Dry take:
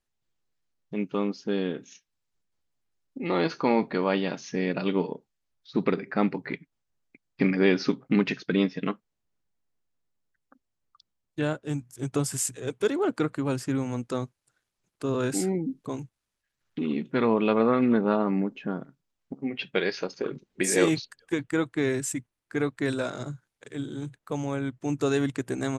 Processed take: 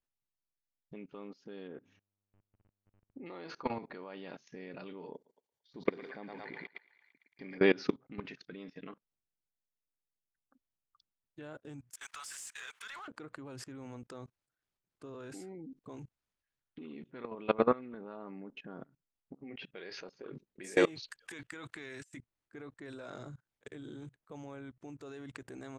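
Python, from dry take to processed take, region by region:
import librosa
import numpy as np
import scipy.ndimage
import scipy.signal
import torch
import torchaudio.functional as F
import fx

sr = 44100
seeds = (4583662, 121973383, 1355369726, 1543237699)

y = fx.lowpass(x, sr, hz=1600.0, slope=12, at=(1.67, 3.25), fade=0.02)
y = fx.dmg_buzz(y, sr, base_hz=100.0, harmonics=31, level_db=-70.0, tilt_db=-7, odd_only=False, at=(1.67, 3.25), fade=0.02)
y = fx.chain(y, sr, fx.high_shelf(hz=5900.0, db=10.5),
    fx.notch_comb(f0_hz=1300.0),
    fx.echo_thinned(ms=113, feedback_pct=61, hz=700.0, wet_db=-5), at=(5.14, 7.58))
y = fx.chain(y, sr, fx.highpass(hz=1200.0, slope=24),
    fx.power_curve(exponent=0.7), at=(11.9, 13.08))
y = fx.chain(y, sr, fx.tilt_shelf(db=-8.5, hz=900.0),
    fx.over_compress(threshold_db=-37.0, ratio=-1.0), at=(21.02, 22.17))
y = fx.lowpass(y, sr, hz=3900.0, slope=6)
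y = fx.dynamic_eq(y, sr, hz=170.0, q=0.99, threshold_db=-39.0, ratio=4.0, max_db=-6)
y = fx.level_steps(y, sr, step_db=23)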